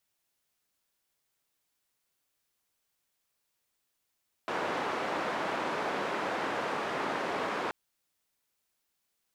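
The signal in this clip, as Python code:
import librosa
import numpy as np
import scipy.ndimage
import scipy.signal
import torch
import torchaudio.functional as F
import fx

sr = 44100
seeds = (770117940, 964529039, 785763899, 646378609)

y = fx.band_noise(sr, seeds[0], length_s=3.23, low_hz=260.0, high_hz=1200.0, level_db=-33.0)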